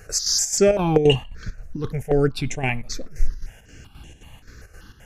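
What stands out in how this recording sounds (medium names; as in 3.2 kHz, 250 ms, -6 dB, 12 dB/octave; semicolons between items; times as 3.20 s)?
chopped level 3.8 Hz, depth 60%, duty 70%; notches that jump at a steady rate 5.2 Hz 920–4700 Hz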